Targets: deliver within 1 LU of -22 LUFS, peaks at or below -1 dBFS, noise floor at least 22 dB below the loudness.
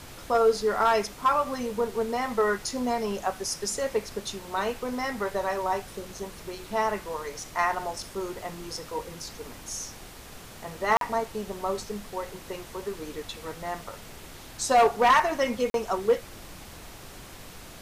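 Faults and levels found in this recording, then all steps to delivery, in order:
dropouts 2; longest dropout 42 ms; noise floor -45 dBFS; noise floor target -50 dBFS; loudness -28.0 LUFS; peak level -13.0 dBFS; loudness target -22.0 LUFS
-> interpolate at 10.97/15.70 s, 42 ms; noise print and reduce 6 dB; trim +6 dB

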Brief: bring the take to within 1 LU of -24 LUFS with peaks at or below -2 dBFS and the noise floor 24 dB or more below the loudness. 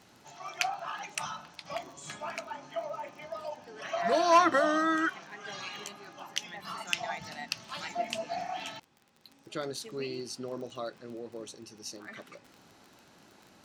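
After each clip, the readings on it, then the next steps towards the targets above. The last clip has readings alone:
tick rate 25 per s; loudness -33.0 LUFS; peak level -9.5 dBFS; loudness target -24.0 LUFS
-> de-click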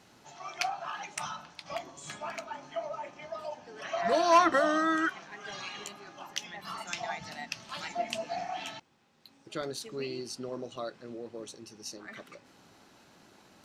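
tick rate 0.15 per s; loudness -33.5 LUFS; peak level -10.5 dBFS; loudness target -24.0 LUFS
-> trim +9.5 dB; peak limiter -2 dBFS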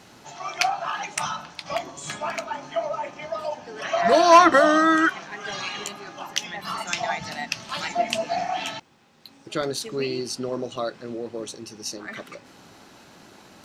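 loudness -24.0 LUFS; peak level -2.0 dBFS; noise floor -51 dBFS

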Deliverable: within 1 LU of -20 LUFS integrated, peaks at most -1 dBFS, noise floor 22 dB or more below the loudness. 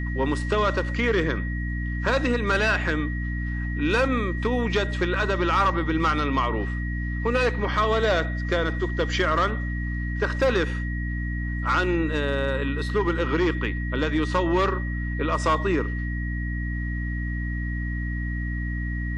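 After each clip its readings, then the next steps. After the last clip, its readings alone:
hum 60 Hz; highest harmonic 300 Hz; hum level -26 dBFS; steady tone 1.9 kHz; tone level -35 dBFS; loudness -25.0 LUFS; peak level -12.0 dBFS; loudness target -20.0 LUFS
-> de-hum 60 Hz, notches 5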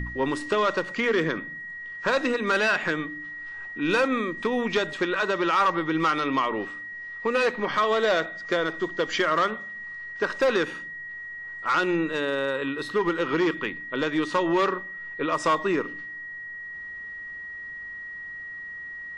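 hum not found; steady tone 1.9 kHz; tone level -35 dBFS
-> band-stop 1.9 kHz, Q 30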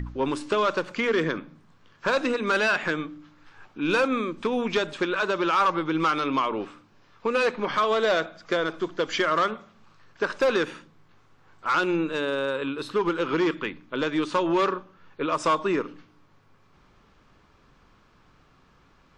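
steady tone not found; loudness -25.5 LUFS; peak level -14.5 dBFS; loudness target -20.0 LUFS
-> trim +5.5 dB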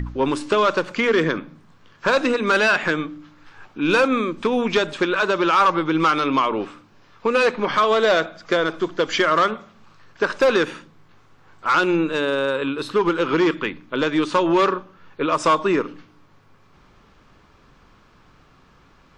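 loudness -20.0 LUFS; peak level -9.0 dBFS; noise floor -54 dBFS

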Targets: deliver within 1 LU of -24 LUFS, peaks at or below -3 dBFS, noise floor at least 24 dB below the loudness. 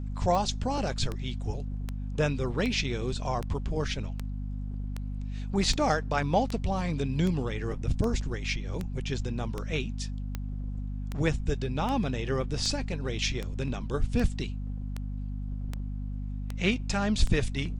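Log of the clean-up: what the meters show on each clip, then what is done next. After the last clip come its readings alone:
clicks found 23; hum 50 Hz; highest harmonic 250 Hz; hum level -31 dBFS; loudness -31.0 LUFS; peak level -10.5 dBFS; loudness target -24.0 LUFS
-> de-click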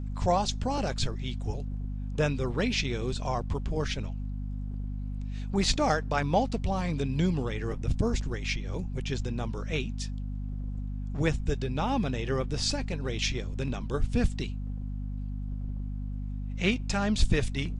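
clicks found 0; hum 50 Hz; highest harmonic 250 Hz; hum level -31 dBFS
-> hum notches 50/100/150/200/250 Hz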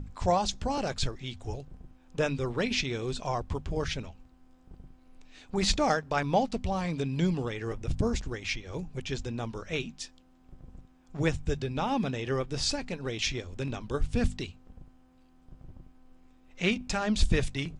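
hum not found; loudness -31.0 LUFS; peak level -11.0 dBFS; loudness target -24.0 LUFS
-> trim +7 dB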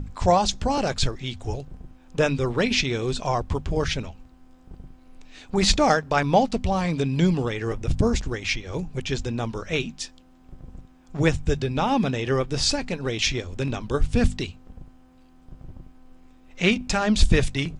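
loudness -24.0 LUFS; peak level -4.0 dBFS; noise floor -53 dBFS

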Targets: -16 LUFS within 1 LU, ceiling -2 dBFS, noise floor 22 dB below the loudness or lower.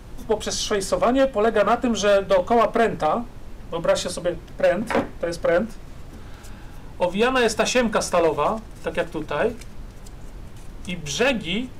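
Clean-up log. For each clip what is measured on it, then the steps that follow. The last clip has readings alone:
clipped samples 1.2%; clipping level -12.5 dBFS; noise floor -40 dBFS; noise floor target -44 dBFS; loudness -22.0 LUFS; peak level -12.5 dBFS; loudness target -16.0 LUFS
-> clip repair -12.5 dBFS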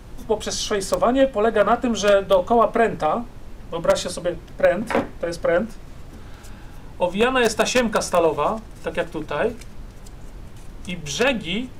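clipped samples 0.0%; noise floor -40 dBFS; noise floor target -43 dBFS
-> noise print and reduce 6 dB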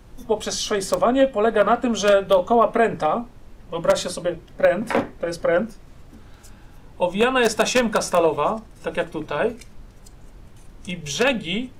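noise floor -46 dBFS; loudness -21.0 LUFS; peak level -3.5 dBFS; loudness target -16.0 LUFS
-> trim +5 dB; peak limiter -2 dBFS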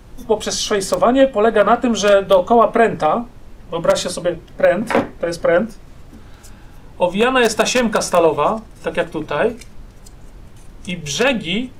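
loudness -16.5 LUFS; peak level -2.0 dBFS; noise floor -41 dBFS

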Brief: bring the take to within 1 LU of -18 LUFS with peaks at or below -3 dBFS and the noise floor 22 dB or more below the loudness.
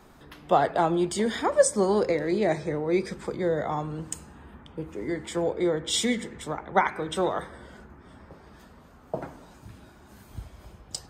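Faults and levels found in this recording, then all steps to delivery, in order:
loudness -27.0 LUFS; peak level -7.5 dBFS; loudness target -18.0 LUFS
-> trim +9 dB; peak limiter -3 dBFS

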